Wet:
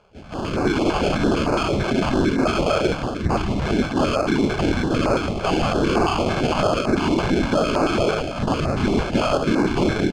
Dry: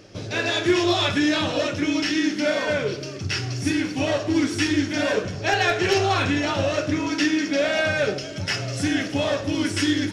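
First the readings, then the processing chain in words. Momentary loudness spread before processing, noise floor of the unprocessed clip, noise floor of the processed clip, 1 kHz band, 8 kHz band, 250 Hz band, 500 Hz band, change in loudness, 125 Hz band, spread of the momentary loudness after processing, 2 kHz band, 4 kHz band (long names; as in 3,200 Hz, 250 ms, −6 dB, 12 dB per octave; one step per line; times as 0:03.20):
6 LU, −33 dBFS, −28 dBFS, +5.0 dB, −4.0 dB, +2.5 dB, +3.0 dB, +2.0 dB, +4.5 dB, 3 LU, −3.0 dB, −3.5 dB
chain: low-shelf EQ 190 Hz −8.5 dB
on a send: single-tap delay 272 ms −24 dB
on the sum: random phases in short frames
flanger 1.3 Hz, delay 8.1 ms, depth 8.5 ms, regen −75%
notch filter 500 Hz, Q 12
brickwall limiter −24 dBFS, peak gain reduction 10.5 dB
automatic gain control gain up to 15.5 dB
sample-rate reduction 1,900 Hz, jitter 0%
high-frequency loss of the air 120 metres
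notch on a step sequencer 8.9 Hz 270–3,200 Hz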